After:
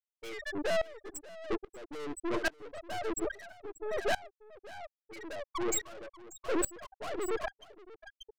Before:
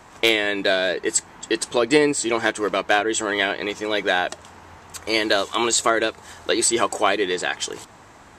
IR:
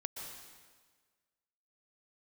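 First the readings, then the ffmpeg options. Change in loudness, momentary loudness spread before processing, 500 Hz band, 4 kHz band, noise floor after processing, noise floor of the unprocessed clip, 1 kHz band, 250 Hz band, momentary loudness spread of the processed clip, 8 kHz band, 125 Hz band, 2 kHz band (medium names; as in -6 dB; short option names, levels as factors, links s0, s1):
-15.0 dB, 9 LU, -14.0 dB, -21.5 dB, under -85 dBFS, -47 dBFS, -16.0 dB, -13.5 dB, 16 LU, -15.5 dB, -13.5 dB, -17.5 dB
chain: -filter_complex "[0:a]asplit=2[s0][s1];[s1]aeval=exprs='(mod(8.41*val(0)+1,2)-1)/8.41':c=same,volume=0.447[s2];[s0][s2]amix=inputs=2:normalize=0,equalizer=f=5000:t=o:w=0.37:g=-5.5,afftfilt=real='re*gte(hypot(re,im),0.501)':imag='im*gte(hypot(re,im),0.501)':win_size=1024:overlap=0.75,aeval=exprs='(tanh(44.7*val(0)+0.6)-tanh(0.6))/44.7':c=same,aecho=1:1:587:0.251,aeval=exprs='val(0)*pow(10,-24*if(lt(mod(-1.2*n/s,1),2*abs(-1.2)/1000),1-mod(-1.2*n/s,1)/(2*abs(-1.2)/1000),(mod(-1.2*n/s,1)-2*abs(-1.2)/1000)/(1-2*abs(-1.2)/1000))/20)':c=same,volume=2.24"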